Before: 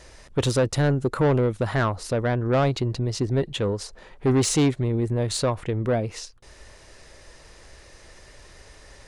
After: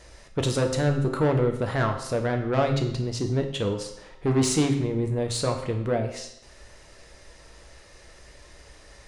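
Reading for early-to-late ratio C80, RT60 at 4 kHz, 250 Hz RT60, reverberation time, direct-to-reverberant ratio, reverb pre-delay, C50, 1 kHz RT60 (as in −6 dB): 10.5 dB, 0.70 s, 0.80 s, 0.80 s, 3.5 dB, 8 ms, 8.0 dB, 0.80 s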